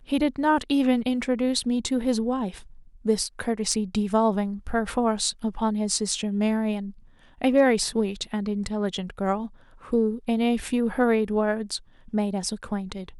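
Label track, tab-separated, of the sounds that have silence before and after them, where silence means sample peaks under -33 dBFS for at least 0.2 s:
3.050000	6.900000	sound
7.410000	9.470000	sound
9.920000	11.770000	sound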